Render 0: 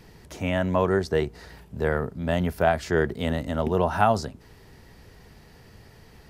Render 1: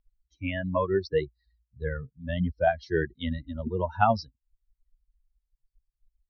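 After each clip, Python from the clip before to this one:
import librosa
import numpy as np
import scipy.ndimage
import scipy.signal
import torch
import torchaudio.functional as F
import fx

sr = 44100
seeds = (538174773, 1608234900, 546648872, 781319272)

y = fx.bin_expand(x, sr, power=3.0)
y = scipy.signal.sosfilt(scipy.signal.butter(16, 5600.0, 'lowpass', fs=sr, output='sos'), y)
y = y * librosa.db_to_amplitude(2.0)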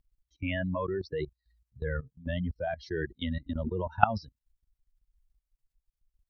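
y = fx.level_steps(x, sr, step_db=18)
y = y * librosa.db_to_amplitude(5.0)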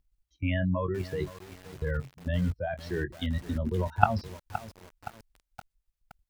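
y = fx.doubler(x, sr, ms=22.0, db=-11.5)
y = fx.dynamic_eq(y, sr, hz=110.0, q=1.1, threshold_db=-46.0, ratio=4.0, max_db=6)
y = fx.echo_crushed(y, sr, ms=519, feedback_pct=55, bits=6, wet_db=-13.0)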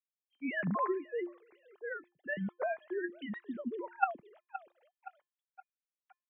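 y = fx.sine_speech(x, sr)
y = fx.comb_fb(y, sr, f0_hz=350.0, decay_s=0.31, harmonics='odd', damping=0.0, mix_pct=60)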